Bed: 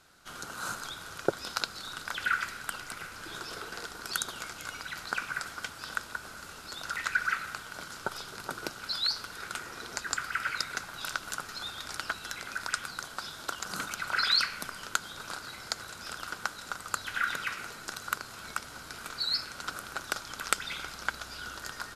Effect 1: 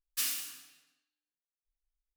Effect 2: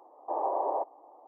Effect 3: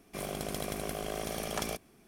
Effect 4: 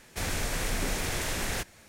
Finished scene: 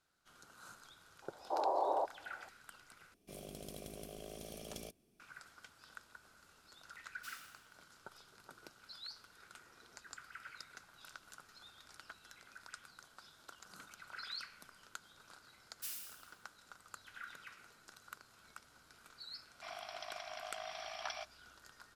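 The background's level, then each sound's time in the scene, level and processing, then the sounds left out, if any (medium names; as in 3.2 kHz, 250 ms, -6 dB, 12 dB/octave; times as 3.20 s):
bed -19.5 dB
1.22 s: add 2 -4 dB
3.14 s: replace with 3 -12 dB + high-order bell 1.3 kHz -9 dB
7.06 s: add 1 -15.5 dB + treble shelf 6.2 kHz -10 dB
15.65 s: add 1 -16 dB + treble shelf 8.4 kHz +6.5 dB
19.48 s: add 3 -5.5 dB + FFT band-pass 610–5900 Hz
not used: 4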